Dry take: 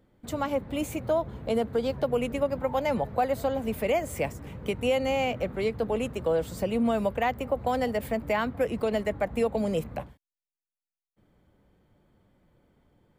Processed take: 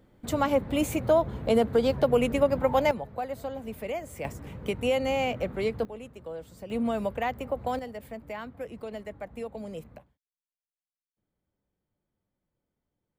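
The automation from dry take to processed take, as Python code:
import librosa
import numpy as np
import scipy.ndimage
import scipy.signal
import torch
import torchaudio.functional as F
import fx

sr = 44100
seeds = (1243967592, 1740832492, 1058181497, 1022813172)

y = fx.gain(x, sr, db=fx.steps((0.0, 4.0), (2.91, -7.5), (4.25, -0.5), (5.85, -13.0), (6.7, -3.0), (7.79, -11.0), (9.98, -19.5)))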